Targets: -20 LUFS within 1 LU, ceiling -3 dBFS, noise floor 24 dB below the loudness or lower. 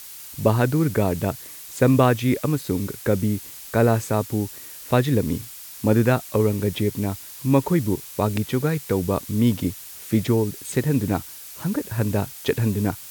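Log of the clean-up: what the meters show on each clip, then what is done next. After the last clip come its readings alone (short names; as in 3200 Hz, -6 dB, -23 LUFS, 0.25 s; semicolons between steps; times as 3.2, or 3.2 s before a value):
noise floor -40 dBFS; noise floor target -47 dBFS; loudness -23.0 LUFS; peak -4.0 dBFS; loudness target -20.0 LUFS
-> noise print and reduce 7 dB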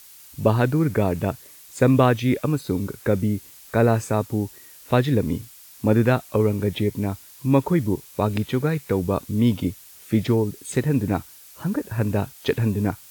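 noise floor -47 dBFS; loudness -23.0 LUFS; peak -4.0 dBFS; loudness target -20.0 LUFS
-> gain +3 dB; limiter -3 dBFS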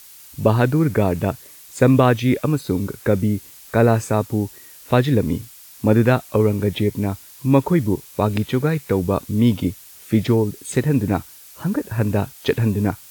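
loudness -20.0 LUFS; peak -3.0 dBFS; noise floor -44 dBFS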